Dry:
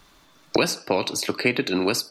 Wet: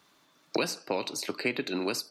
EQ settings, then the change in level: HPF 150 Hz 12 dB/oct; -8.0 dB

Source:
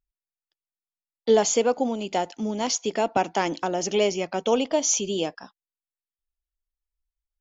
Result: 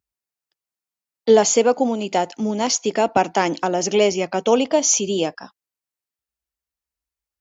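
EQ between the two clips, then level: HPF 64 Hz 24 dB/oct; bell 3400 Hz -4 dB 0.28 oct; +5.5 dB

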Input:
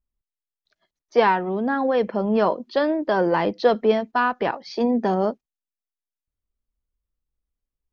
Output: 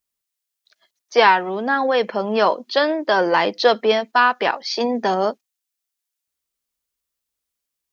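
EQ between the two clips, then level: HPF 600 Hz 6 dB/oct; high shelf 2600 Hz +9.5 dB; +5.5 dB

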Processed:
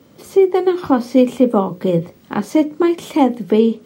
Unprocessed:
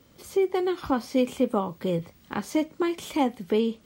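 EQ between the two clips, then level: HPF 140 Hz 12 dB/oct; tilt shelf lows +4.5 dB; notches 60/120/180/240/300/360/420/480/540 Hz; +8.5 dB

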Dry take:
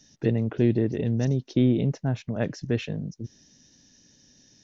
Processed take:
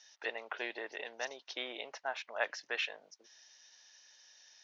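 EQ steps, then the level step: HPF 810 Hz 24 dB/oct; air absorption 140 m; +5.0 dB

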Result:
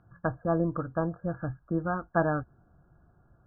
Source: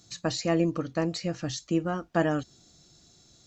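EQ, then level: brick-wall FIR low-pass 1700 Hz; air absorption 360 m; bell 300 Hz -11.5 dB 2.3 oct; +7.5 dB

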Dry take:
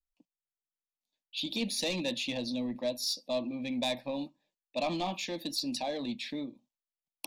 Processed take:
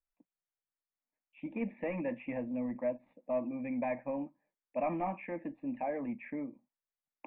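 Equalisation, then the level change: steep low-pass 2300 Hz 72 dB/oct; low shelf 200 Hz -4 dB; notch 370 Hz, Q 12; 0.0 dB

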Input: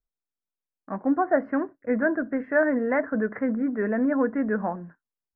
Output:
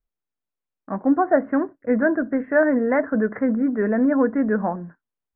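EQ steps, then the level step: air absorption 430 m; +5.5 dB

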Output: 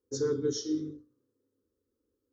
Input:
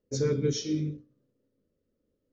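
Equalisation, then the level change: HPF 57 Hz; fixed phaser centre 640 Hz, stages 6; 0.0 dB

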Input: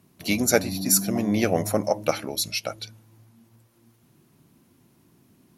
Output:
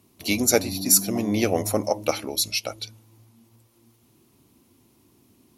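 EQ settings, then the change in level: fifteen-band EQ 160 Hz -11 dB, 630 Hz -4 dB, 1600 Hz -8 dB; +3.0 dB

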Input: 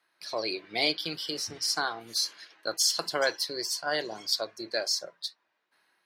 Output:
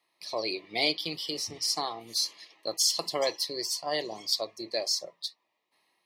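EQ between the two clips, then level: Butterworth band-stop 1500 Hz, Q 2.4; 0.0 dB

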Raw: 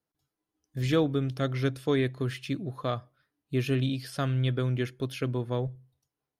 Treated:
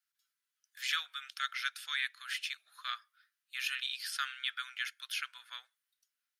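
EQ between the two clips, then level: elliptic high-pass 1400 Hz, stop band 80 dB; +4.0 dB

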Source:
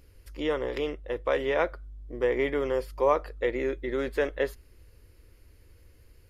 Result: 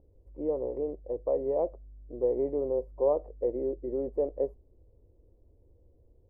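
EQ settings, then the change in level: inverse Chebyshev low-pass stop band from 1400 Hz, stop band 40 dB; low shelf 370 Hz -8 dB; +2.0 dB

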